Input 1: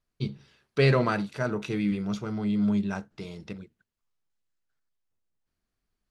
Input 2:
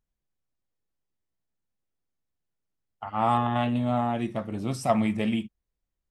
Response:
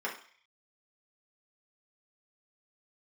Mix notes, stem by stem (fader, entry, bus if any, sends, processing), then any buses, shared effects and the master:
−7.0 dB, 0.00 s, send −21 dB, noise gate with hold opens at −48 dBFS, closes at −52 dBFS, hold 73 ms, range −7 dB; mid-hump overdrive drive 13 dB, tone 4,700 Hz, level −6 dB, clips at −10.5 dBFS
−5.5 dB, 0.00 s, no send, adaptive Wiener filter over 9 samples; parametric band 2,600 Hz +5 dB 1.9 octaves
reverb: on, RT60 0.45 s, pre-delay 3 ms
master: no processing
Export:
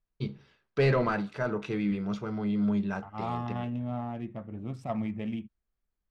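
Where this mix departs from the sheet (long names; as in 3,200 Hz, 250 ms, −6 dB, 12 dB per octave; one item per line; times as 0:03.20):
stem 2 −5.5 dB → −13.0 dB
master: extra spectral tilt −2.5 dB per octave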